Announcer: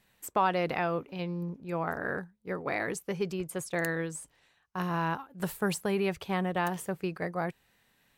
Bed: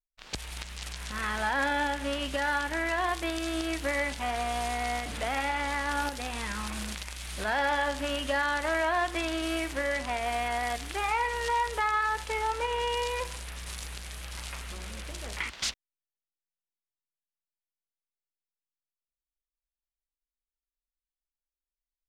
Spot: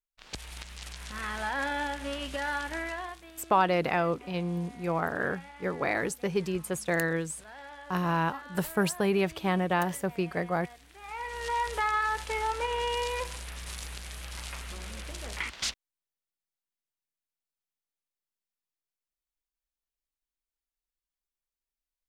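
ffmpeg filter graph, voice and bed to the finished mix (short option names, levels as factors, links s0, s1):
-filter_complex "[0:a]adelay=3150,volume=1.41[s0];[1:a]volume=5.62,afade=t=out:st=2.75:d=0.48:silence=0.16788,afade=t=in:st=11:d=0.71:silence=0.11885[s1];[s0][s1]amix=inputs=2:normalize=0"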